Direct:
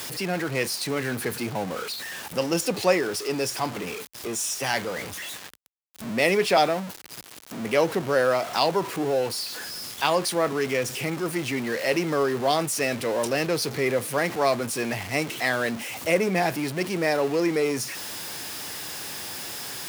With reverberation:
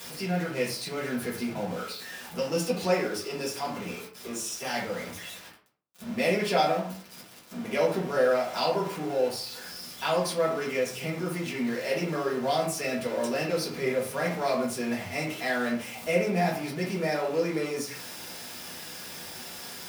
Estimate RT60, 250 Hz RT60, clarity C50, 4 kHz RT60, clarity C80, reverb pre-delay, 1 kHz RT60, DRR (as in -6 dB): 0.50 s, 0.55 s, 6.0 dB, 0.30 s, 10.0 dB, 3 ms, 0.50 s, -5.0 dB